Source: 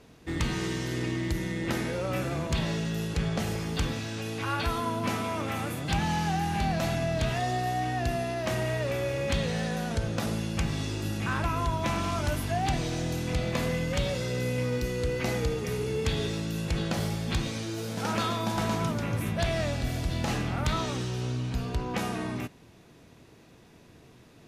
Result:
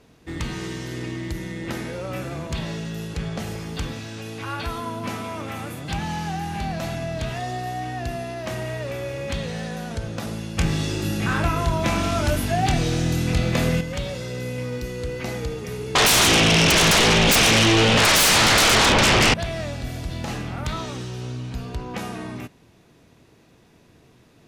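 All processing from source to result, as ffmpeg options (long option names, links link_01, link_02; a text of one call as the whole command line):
ffmpeg -i in.wav -filter_complex "[0:a]asettb=1/sr,asplit=3[link_01][link_02][link_03];[link_01]atrim=end=10.584[link_04];[link_02]atrim=start=10.58:end=13.81,asetpts=PTS-STARTPTS,afade=type=in:duration=0.004:curve=qsin,afade=type=out:start_time=3.226:duration=0.004:curve=qsin,equalizer=frequency=1000:width=4.4:gain=-5,acontrast=79,asplit=2[link_05][link_06];[link_06]adelay=25,volume=-7.5dB[link_07];[link_05][link_07]amix=inputs=2:normalize=0,atrim=end_sample=142443[link_08];[link_03]atrim=start=13.806[link_09];[link_04][link_08]acrossfade=duration=0.004:curve1=hsin:curve2=qsin[link_10];[link_10][link_09]acrossfade=duration=0.004:curve1=qsin:curve2=hsin,asettb=1/sr,asplit=3[link_11][link_12][link_13];[link_11]atrim=end=15.954[link_14];[link_12]atrim=start=15.95:end=19.34,asetpts=PTS-STARTPTS,afade=type=in:duration=0.004:curve=qsin,afade=type=out:start_time=3.386:duration=0.004:curve=qsin,lowpass=frequency=2900:width_type=q:width=4,aeval=exprs='0.224*sin(PI/2*8.91*val(0)/0.224)':channel_layout=same[link_15];[link_13]atrim=start=19.336[link_16];[link_14][link_15]acrossfade=duration=0.004:curve1=hsin:curve2=qsin[link_17];[link_17][link_16]acrossfade=duration=0.004:curve1=qsin:curve2=hsin" out.wav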